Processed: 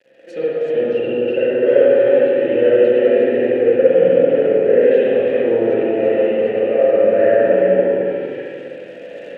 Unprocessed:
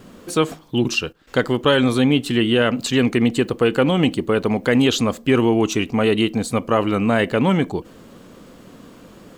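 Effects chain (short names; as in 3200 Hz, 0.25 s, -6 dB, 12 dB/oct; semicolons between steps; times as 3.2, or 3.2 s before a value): regenerating reverse delay 0.19 s, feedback 48%, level -1 dB; sample leveller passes 3; high shelf 4300 Hz +8 dB; treble ducked by the level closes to 1300 Hz, closed at -7 dBFS; AGC gain up to 16.5 dB; requantised 6-bit, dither none; vowel filter e; on a send: darkening echo 70 ms, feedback 75%, low-pass 2000 Hz, level -6 dB; on the sum: spring tank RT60 1.9 s, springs 43/49/58 ms, chirp 70 ms, DRR -7 dB; gain -5.5 dB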